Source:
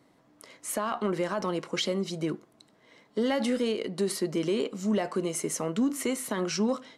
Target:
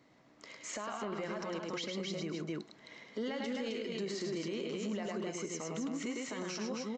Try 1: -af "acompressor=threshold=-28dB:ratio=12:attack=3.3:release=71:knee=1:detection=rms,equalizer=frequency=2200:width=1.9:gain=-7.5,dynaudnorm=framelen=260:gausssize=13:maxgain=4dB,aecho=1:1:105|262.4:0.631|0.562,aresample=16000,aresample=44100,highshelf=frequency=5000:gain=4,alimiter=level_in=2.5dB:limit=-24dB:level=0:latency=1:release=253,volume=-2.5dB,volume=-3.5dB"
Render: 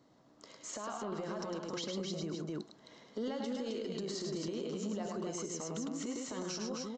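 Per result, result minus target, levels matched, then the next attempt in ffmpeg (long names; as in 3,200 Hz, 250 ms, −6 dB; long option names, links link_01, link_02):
downward compressor: peak gain reduction +7 dB; 2,000 Hz band −6.5 dB
-af "equalizer=frequency=2200:width=1.9:gain=-7.5,dynaudnorm=framelen=260:gausssize=13:maxgain=4dB,aecho=1:1:105|262.4:0.631|0.562,aresample=16000,aresample=44100,highshelf=frequency=5000:gain=4,alimiter=level_in=2.5dB:limit=-24dB:level=0:latency=1:release=253,volume=-2.5dB,volume=-3.5dB"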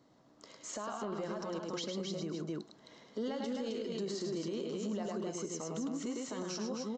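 2,000 Hz band −7.0 dB
-af "equalizer=frequency=2200:width=1.9:gain=4.5,dynaudnorm=framelen=260:gausssize=13:maxgain=4dB,aecho=1:1:105|262.4:0.631|0.562,aresample=16000,aresample=44100,highshelf=frequency=5000:gain=4,alimiter=level_in=2.5dB:limit=-24dB:level=0:latency=1:release=253,volume=-2.5dB,volume=-3.5dB"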